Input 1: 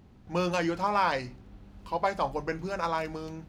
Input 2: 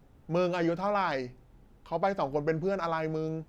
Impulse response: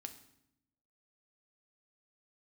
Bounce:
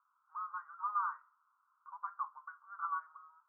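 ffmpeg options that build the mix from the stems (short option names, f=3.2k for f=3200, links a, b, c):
-filter_complex "[0:a]volume=-6.5dB[a];[1:a]acompressor=threshold=-37dB:ratio=1.5,volume=-2dB,asplit=2[b][c];[c]volume=-5dB[d];[2:a]atrim=start_sample=2205[e];[d][e]afir=irnorm=-1:irlink=0[f];[a][b][f]amix=inputs=3:normalize=0,asuperpass=centerf=1200:order=8:qfactor=2.8"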